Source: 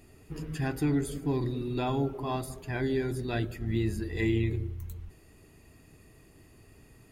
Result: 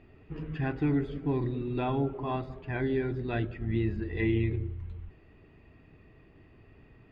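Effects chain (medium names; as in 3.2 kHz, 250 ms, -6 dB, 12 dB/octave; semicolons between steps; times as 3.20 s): low-pass 3.1 kHz 24 dB/octave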